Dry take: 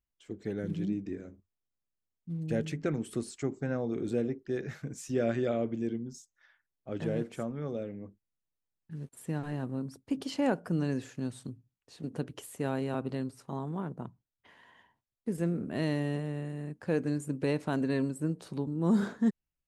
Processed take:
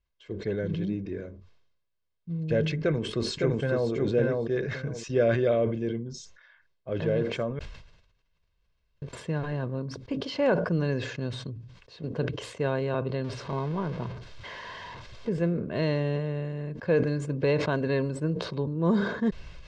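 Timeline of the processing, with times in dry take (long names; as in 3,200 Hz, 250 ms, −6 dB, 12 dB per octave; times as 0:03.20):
0:02.81–0:03.91: delay throw 560 ms, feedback 15%, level −2.5 dB
0:07.59–0:09.02: fill with room tone
0:13.24–0:15.29: converter with a step at zero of −41.5 dBFS
whole clip: low-pass filter 4,800 Hz 24 dB per octave; comb filter 1.9 ms, depth 53%; level that may fall only so fast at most 64 dB per second; level +4.5 dB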